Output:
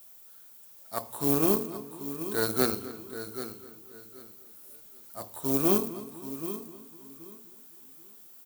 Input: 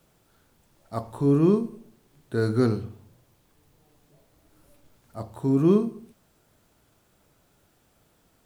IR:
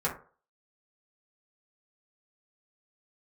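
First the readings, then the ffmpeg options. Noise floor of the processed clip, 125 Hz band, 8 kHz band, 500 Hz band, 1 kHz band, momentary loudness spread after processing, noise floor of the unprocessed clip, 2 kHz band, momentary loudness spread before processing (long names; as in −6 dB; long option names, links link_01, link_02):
−52 dBFS, −12.0 dB, can't be measured, −4.5 dB, +1.0 dB, 24 LU, −65 dBFS, +2.5 dB, 17 LU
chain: -filter_complex "[0:a]asplit=2[link_01][link_02];[link_02]aecho=0:1:783|1566|2349:0.316|0.0727|0.0167[link_03];[link_01][link_03]amix=inputs=2:normalize=0,acrusher=bits=8:mode=log:mix=0:aa=0.000001,bandreject=frequency=60:width_type=h:width=6,bandreject=frequency=120:width_type=h:width=6,bandreject=frequency=180:width_type=h:width=6,bandreject=frequency=240:width_type=h:width=6,bandreject=frequency=300:width_type=h:width=6,bandreject=frequency=360:width_type=h:width=6,bandreject=frequency=420:width_type=h:width=6,asplit=2[link_04][link_05];[link_05]adelay=255,lowpass=frequency=3700:poles=1,volume=-13dB,asplit=2[link_06][link_07];[link_07]adelay=255,lowpass=frequency=3700:poles=1,volume=0.54,asplit=2[link_08][link_09];[link_09]adelay=255,lowpass=frequency=3700:poles=1,volume=0.54,asplit=2[link_10][link_11];[link_11]adelay=255,lowpass=frequency=3700:poles=1,volume=0.54,asplit=2[link_12][link_13];[link_13]adelay=255,lowpass=frequency=3700:poles=1,volume=0.54,asplit=2[link_14][link_15];[link_15]adelay=255,lowpass=frequency=3700:poles=1,volume=0.54[link_16];[link_06][link_08][link_10][link_12][link_14][link_16]amix=inputs=6:normalize=0[link_17];[link_04][link_17]amix=inputs=2:normalize=0,aeval=exprs='0.376*(cos(1*acos(clip(val(0)/0.376,-1,1)))-cos(1*PI/2))+0.106*(cos(2*acos(clip(val(0)/0.376,-1,1)))-cos(2*PI/2))+0.00944*(cos(7*acos(clip(val(0)/0.376,-1,1)))-cos(7*PI/2))':channel_layout=same,aemphasis=mode=production:type=riaa,volume=-1dB"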